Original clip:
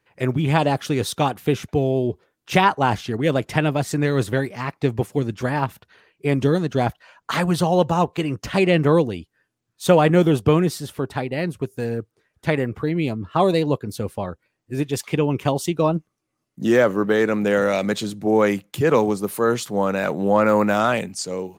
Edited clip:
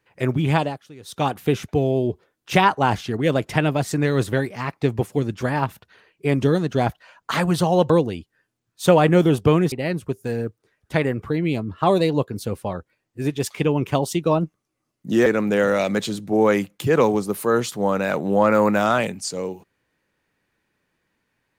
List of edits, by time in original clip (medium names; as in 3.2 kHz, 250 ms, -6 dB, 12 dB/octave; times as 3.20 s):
0.53–1.29 s: dip -20.5 dB, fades 0.26 s
7.90–8.91 s: delete
10.73–11.25 s: delete
16.79–17.20 s: delete